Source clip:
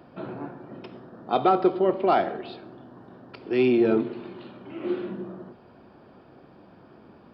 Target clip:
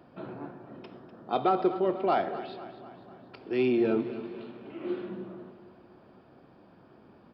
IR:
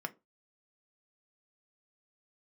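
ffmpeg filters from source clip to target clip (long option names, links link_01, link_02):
-af "aecho=1:1:248|496|744|992|1240:0.2|0.108|0.0582|0.0314|0.017,volume=-5dB"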